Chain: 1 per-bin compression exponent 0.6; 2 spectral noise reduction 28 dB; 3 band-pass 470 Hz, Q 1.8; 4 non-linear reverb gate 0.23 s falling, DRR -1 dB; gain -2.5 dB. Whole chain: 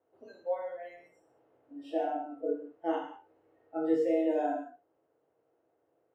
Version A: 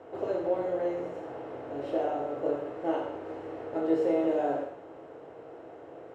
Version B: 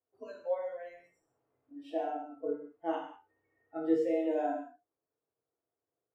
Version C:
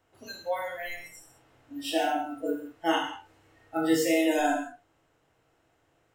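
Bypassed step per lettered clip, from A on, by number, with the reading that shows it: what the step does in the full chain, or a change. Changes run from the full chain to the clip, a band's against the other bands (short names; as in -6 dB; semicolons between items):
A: 2, 500 Hz band +1.5 dB; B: 1, crest factor change +1.5 dB; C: 3, 2 kHz band +11.0 dB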